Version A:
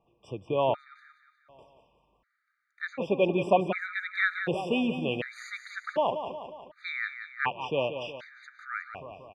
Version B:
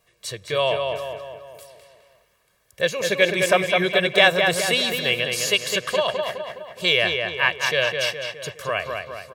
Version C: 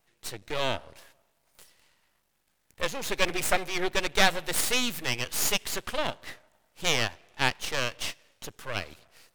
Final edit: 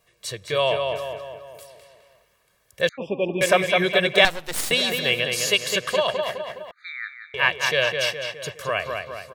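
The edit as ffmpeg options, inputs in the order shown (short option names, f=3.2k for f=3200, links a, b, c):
-filter_complex "[0:a]asplit=2[a][b];[1:a]asplit=4[c][d][e][f];[c]atrim=end=2.892[g];[a]atrim=start=2.888:end=3.412[h];[d]atrim=start=3.408:end=4.252[i];[2:a]atrim=start=4.248:end=4.712[j];[e]atrim=start=4.708:end=6.712[k];[b]atrim=start=6.708:end=7.342[l];[f]atrim=start=7.338[m];[g][h]acrossfade=d=0.004:c1=hsin:c2=hsin[n];[n][i]acrossfade=d=0.004:c1=hsin:c2=hsin[o];[o][j]acrossfade=d=0.004:c1=hsin:c2=hsin[p];[p][k]acrossfade=d=0.004:c1=hsin:c2=hsin[q];[q][l]acrossfade=d=0.004:c1=hsin:c2=hsin[r];[r][m]acrossfade=d=0.004:c1=hsin:c2=hsin"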